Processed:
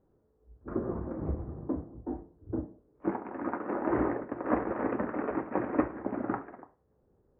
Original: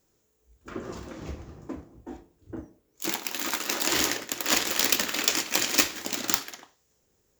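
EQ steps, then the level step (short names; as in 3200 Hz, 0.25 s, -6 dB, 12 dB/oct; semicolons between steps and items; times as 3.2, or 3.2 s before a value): Gaussian blur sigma 7.7 samples; +5.0 dB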